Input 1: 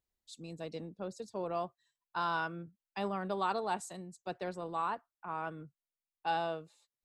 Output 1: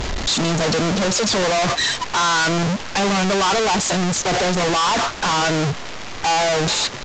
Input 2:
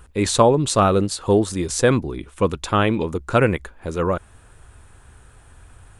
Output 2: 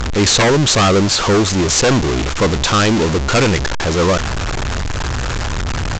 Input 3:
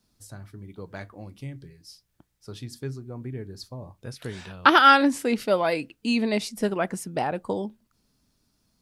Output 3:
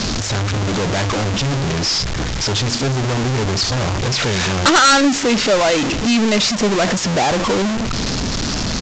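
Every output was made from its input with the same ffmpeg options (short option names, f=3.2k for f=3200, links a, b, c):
-af "aeval=exprs='val(0)+0.5*0.168*sgn(val(0))':c=same,adynamicsmooth=sensitivity=4:basefreq=550,aresample=16000,aeval=exprs='0.316*(abs(mod(val(0)/0.316+3,4)-2)-1)':c=same,aresample=44100,aemphasis=mode=production:type=cd,volume=2.5dB"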